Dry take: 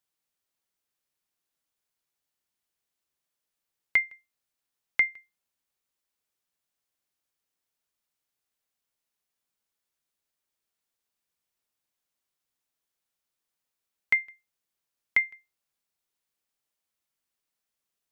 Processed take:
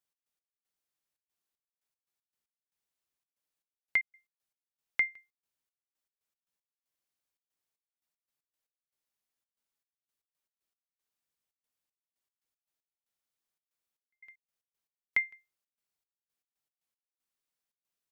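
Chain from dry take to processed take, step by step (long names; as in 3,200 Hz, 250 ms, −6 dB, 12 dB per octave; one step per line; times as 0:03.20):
gate pattern "x.x..xxxx.xx..x." 116 BPM −60 dB
level −5 dB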